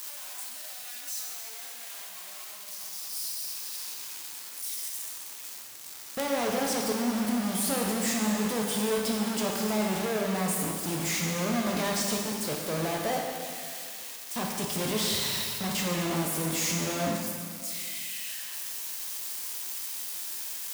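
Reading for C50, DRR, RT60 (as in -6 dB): 1.5 dB, -1.0 dB, 2.1 s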